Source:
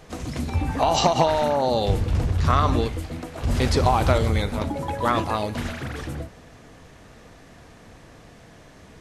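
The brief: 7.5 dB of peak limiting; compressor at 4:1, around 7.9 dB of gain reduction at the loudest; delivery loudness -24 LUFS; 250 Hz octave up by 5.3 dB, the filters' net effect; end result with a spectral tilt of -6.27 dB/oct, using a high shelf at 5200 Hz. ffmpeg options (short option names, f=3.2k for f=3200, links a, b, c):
-af "equalizer=f=250:t=o:g=6.5,highshelf=f=5.2k:g=-7.5,acompressor=threshold=-23dB:ratio=4,volume=5.5dB,alimiter=limit=-14dB:level=0:latency=1"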